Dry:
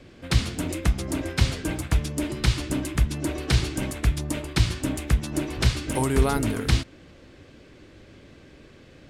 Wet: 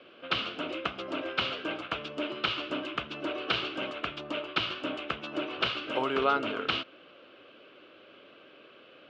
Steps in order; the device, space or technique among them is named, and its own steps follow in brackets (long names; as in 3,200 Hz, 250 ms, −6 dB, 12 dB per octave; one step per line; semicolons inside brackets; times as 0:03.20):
phone earpiece (loudspeaker in its box 460–3,400 Hz, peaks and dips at 590 Hz +3 dB, 860 Hz −5 dB, 1,300 Hz +8 dB, 1,900 Hz −10 dB, 2,900 Hz +8 dB)